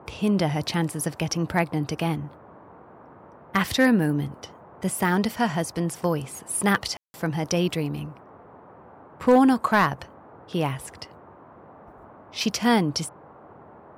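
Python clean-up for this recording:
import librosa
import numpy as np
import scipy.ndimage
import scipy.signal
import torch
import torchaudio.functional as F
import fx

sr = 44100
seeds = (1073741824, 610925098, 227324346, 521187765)

y = fx.fix_declip(x, sr, threshold_db=-10.0)
y = fx.fix_ambience(y, sr, seeds[0], print_start_s=11.19, print_end_s=11.69, start_s=6.97, end_s=7.14)
y = fx.noise_reduce(y, sr, print_start_s=11.19, print_end_s=11.69, reduce_db=20.0)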